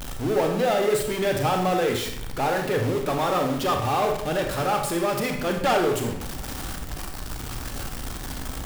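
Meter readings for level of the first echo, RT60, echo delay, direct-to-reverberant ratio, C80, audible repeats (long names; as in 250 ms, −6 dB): no echo audible, 0.70 s, no echo audible, 3.0 dB, 8.5 dB, no echo audible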